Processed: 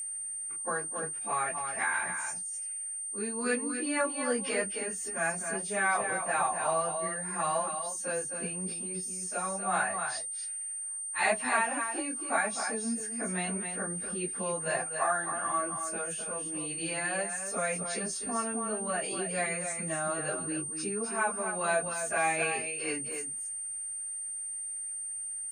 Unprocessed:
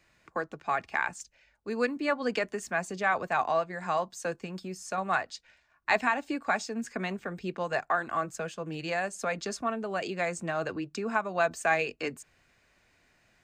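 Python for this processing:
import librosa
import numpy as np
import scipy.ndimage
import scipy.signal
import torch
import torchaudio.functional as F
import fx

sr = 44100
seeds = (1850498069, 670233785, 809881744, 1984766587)

y = x + 10.0 ** (-7.0 / 20.0) * np.pad(x, (int(136 * sr / 1000.0), 0))[:len(x)]
y = y + 10.0 ** (-34.0 / 20.0) * np.sin(2.0 * np.pi * 8800.0 * np.arange(len(y)) / sr)
y = fx.stretch_vocoder_free(y, sr, factor=1.9)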